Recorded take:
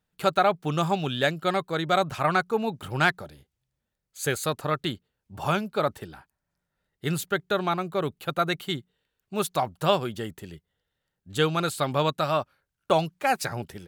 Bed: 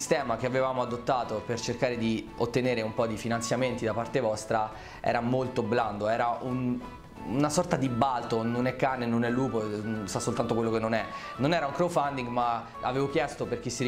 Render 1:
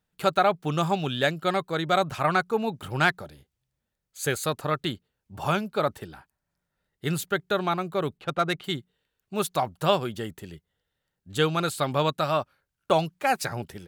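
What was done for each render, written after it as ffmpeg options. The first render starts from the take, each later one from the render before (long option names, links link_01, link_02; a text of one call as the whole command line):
ffmpeg -i in.wav -filter_complex "[0:a]asettb=1/sr,asplit=3[link_01][link_02][link_03];[link_01]atrim=end=8.174[link_04];[link_02]atrim=start=8.17:end=8.64,asetpts=PTS-STARTPTS,afade=type=in:duration=0.004:curve=qsin,afade=type=out:start_time=0.466:duration=0.004:curve=qsin,adynamicsmooth=sensitivity=4.5:basefreq=2900[link_05];[link_03]atrim=start=8.636[link_06];[link_04][link_05]acrossfade=duration=0.004:curve1=hsin:curve2=qsin[link_07];[link_07][link_06]acrossfade=duration=0.004:curve1=qsin:curve2=hsin" out.wav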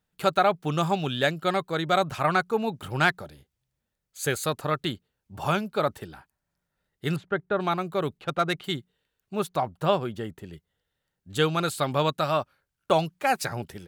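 ffmpeg -i in.wav -filter_complex "[0:a]asettb=1/sr,asplit=3[link_01][link_02][link_03];[link_01]atrim=end=7.164[link_04];[link_02]atrim=start=7.16:end=7.6,asetpts=PTS-STARTPTS,afade=type=in:duration=0.004:curve=qsin,afade=type=out:start_time=0.436:duration=0.004:curve=qsin,lowpass=1700[link_05];[link_03]atrim=start=7.596[link_06];[link_04][link_05]acrossfade=duration=0.004:curve1=hsin:curve2=qsin[link_07];[link_07][link_06]acrossfade=duration=0.004:curve1=qsin:curve2=hsin,asettb=1/sr,asplit=3[link_08][link_09][link_10];[link_08]atrim=end=9.354[link_11];[link_09]atrim=start=9.35:end=10.53,asetpts=PTS-STARTPTS,afade=type=in:duration=0.004:curve=qsin,afade=type=out:start_time=1.176:duration=0.004:curve=qsin,equalizer=frequency=14000:width_type=o:width=2.7:gain=-9[link_12];[link_10]atrim=start=10.526[link_13];[link_11][link_12]acrossfade=duration=0.004:curve1=hsin:curve2=qsin[link_14];[link_14][link_13]acrossfade=duration=0.004:curve1=qsin:curve2=hsin" out.wav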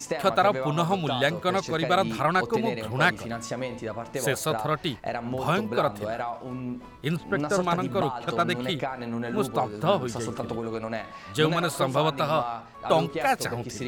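ffmpeg -i in.wav -i bed.wav -filter_complex "[1:a]volume=-4dB[link_01];[0:a][link_01]amix=inputs=2:normalize=0" out.wav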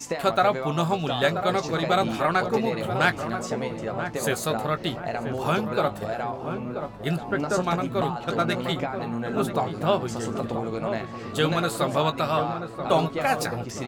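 ffmpeg -i in.wav -filter_complex "[0:a]asplit=2[link_01][link_02];[link_02]adelay=18,volume=-11dB[link_03];[link_01][link_03]amix=inputs=2:normalize=0,asplit=2[link_04][link_05];[link_05]adelay=982,lowpass=frequency=1100:poles=1,volume=-7dB,asplit=2[link_06][link_07];[link_07]adelay=982,lowpass=frequency=1100:poles=1,volume=0.55,asplit=2[link_08][link_09];[link_09]adelay=982,lowpass=frequency=1100:poles=1,volume=0.55,asplit=2[link_10][link_11];[link_11]adelay=982,lowpass=frequency=1100:poles=1,volume=0.55,asplit=2[link_12][link_13];[link_13]adelay=982,lowpass=frequency=1100:poles=1,volume=0.55,asplit=2[link_14][link_15];[link_15]adelay=982,lowpass=frequency=1100:poles=1,volume=0.55,asplit=2[link_16][link_17];[link_17]adelay=982,lowpass=frequency=1100:poles=1,volume=0.55[link_18];[link_04][link_06][link_08][link_10][link_12][link_14][link_16][link_18]amix=inputs=8:normalize=0" out.wav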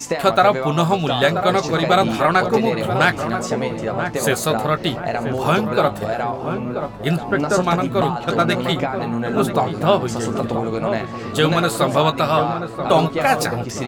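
ffmpeg -i in.wav -af "volume=7dB,alimiter=limit=-2dB:level=0:latency=1" out.wav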